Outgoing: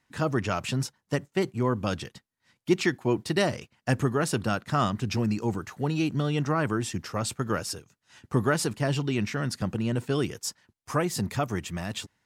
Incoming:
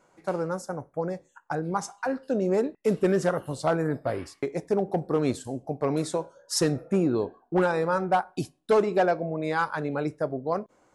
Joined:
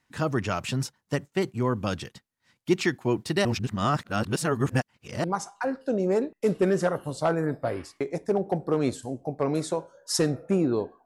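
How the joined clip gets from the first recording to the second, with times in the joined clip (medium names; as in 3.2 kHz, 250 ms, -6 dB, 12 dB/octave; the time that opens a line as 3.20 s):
outgoing
3.45–5.24 s: reverse
5.24 s: go over to incoming from 1.66 s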